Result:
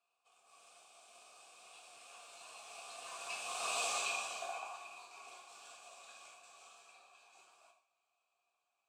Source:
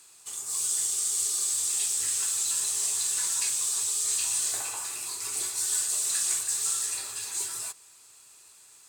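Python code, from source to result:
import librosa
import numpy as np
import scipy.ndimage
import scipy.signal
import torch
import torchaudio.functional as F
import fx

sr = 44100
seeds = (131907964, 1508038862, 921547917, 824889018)

p1 = fx.doppler_pass(x, sr, speed_mps=12, closest_m=2.0, pass_at_s=3.82)
p2 = fx.sample_hold(p1, sr, seeds[0], rate_hz=14000.0, jitter_pct=20)
p3 = p1 + F.gain(torch.from_numpy(p2), -9.5).numpy()
p4 = fx.vowel_filter(p3, sr, vowel='a')
p5 = fx.rev_gated(p4, sr, seeds[1], gate_ms=180, shape='falling', drr_db=1.5)
y = F.gain(torch.from_numpy(p5), 15.0).numpy()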